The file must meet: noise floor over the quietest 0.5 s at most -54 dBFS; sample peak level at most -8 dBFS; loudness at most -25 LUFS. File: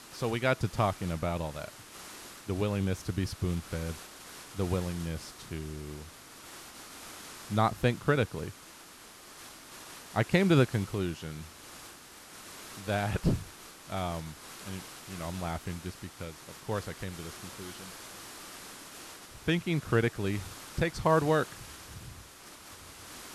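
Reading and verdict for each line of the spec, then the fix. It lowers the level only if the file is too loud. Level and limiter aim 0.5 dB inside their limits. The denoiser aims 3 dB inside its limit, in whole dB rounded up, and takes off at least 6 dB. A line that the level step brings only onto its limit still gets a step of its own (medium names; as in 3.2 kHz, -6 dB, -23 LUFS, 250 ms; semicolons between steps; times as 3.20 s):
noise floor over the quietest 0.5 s -51 dBFS: fail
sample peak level -9.5 dBFS: pass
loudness -32.5 LUFS: pass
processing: noise reduction 6 dB, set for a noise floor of -51 dBFS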